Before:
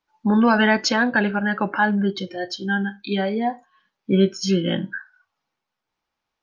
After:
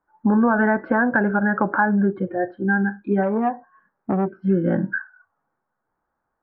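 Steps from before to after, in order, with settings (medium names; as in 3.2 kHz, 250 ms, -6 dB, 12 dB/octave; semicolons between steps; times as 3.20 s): elliptic low-pass 1.6 kHz, stop band 80 dB; compression 3:1, threshold -23 dBFS, peak gain reduction 8.5 dB; 3.23–4.29 s: transformer saturation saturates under 540 Hz; trim +6.5 dB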